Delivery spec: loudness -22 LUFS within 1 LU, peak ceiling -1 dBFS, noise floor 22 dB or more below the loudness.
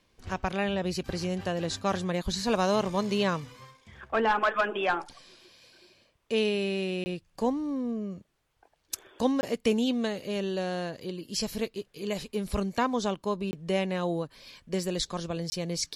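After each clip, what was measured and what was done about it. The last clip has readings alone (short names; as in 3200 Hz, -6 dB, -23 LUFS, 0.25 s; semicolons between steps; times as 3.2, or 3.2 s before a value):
dropouts 4; longest dropout 20 ms; loudness -30.0 LUFS; peak -12.5 dBFS; loudness target -22.0 LUFS
-> interpolate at 7.04/9.41/13.51/15.5, 20 ms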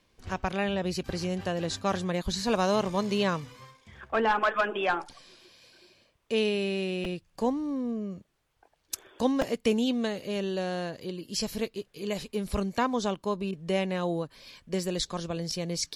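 dropouts 0; loudness -30.0 LUFS; peak -12.5 dBFS; loudness target -22.0 LUFS
-> gain +8 dB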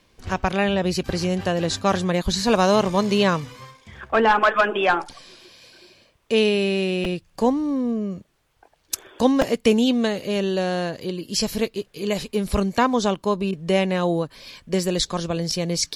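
loudness -22.0 LUFS; peak -4.5 dBFS; noise floor -63 dBFS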